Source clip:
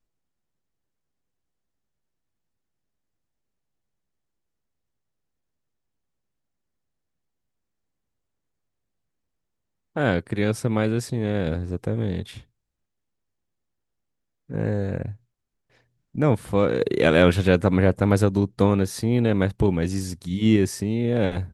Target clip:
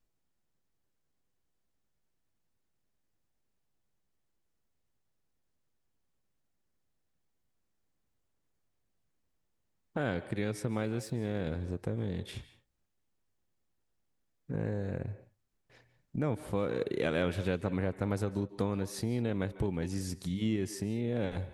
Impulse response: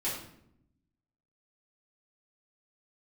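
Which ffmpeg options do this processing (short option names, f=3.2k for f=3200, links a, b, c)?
-filter_complex "[0:a]asettb=1/sr,asplit=3[a][b][c];[a]atrim=end=10.774[d];[b]atrim=start=10.77:end=11.4,asetpts=PTS-STARTPTS,afade=t=in:d=0.004:c=qsin,afade=t=out:st=0.626:d=0.004:c=qsin,aeval=exprs='sgn(val(0))*max(abs(val(0))-0.00299,0)':c=same[e];[c]atrim=start=11.396[f];[d][e]acrossfade=d=0.004:c1=hsin:c2=qsin[g];[g][f]acrossfade=d=0.004:c1=qsin:c2=hsin,acompressor=threshold=-35dB:ratio=2.5,asplit=2[h][i];[i]bass=f=250:g=-14,treble=f=4k:g=-4[j];[1:a]atrim=start_sample=2205,atrim=end_sample=3528,adelay=141[k];[j][k]afir=irnorm=-1:irlink=0,volume=-18dB[l];[h][l]amix=inputs=2:normalize=0"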